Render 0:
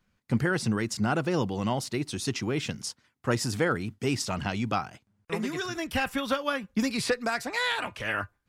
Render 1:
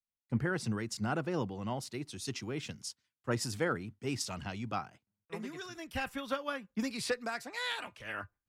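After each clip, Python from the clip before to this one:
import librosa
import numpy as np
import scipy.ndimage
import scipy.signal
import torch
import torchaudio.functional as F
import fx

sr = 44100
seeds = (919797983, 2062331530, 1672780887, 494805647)

y = fx.band_widen(x, sr, depth_pct=70)
y = y * librosa.db_to_amplitude(-8.0)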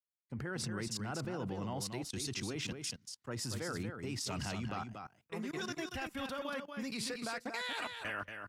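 y = fx.level_steps(x, sr, step_db=23)
y = y + 10.0 ** (-6.5 / 20.0) * np.pad(y, (int(234 * sr / 1000.0), 0))[:len(y)]
y = y * librosa.db_to_amplitude(6.5)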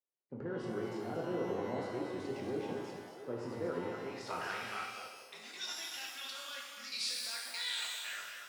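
y = fx.filter_sweep_bandpass(x, sr, from_hz=430.0, to_hz=4500.0, start_s=3.67, end_s=5.29, q=1.7)
y = fx.echo_stepped(y, sr, ms=682, hz=490.0, octaves=0.7, feedback_pct=70, wet_db=-11.0)
y = fx.rev_shimmer(y, sr, seeds[0], rt60_s=1.1, semitones=12, shimmer_db=-8, drr_db=-1.5)
y = y * librosa.db_to_amplitude(4.5)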